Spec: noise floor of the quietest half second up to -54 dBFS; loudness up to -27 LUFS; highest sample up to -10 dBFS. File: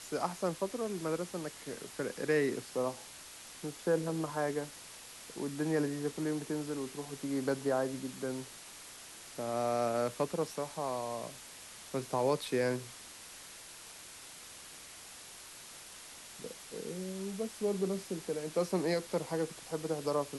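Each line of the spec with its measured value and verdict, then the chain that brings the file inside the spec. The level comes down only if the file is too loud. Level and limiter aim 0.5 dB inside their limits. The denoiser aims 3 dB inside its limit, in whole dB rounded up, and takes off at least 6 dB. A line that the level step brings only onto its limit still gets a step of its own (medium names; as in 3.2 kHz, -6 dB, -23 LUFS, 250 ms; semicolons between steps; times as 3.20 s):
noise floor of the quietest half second -51 dBFS: fail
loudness -36.0 LUFS: pass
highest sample -18.5 dBFS: pass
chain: noise reduction 6 dB, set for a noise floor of -51 dBFS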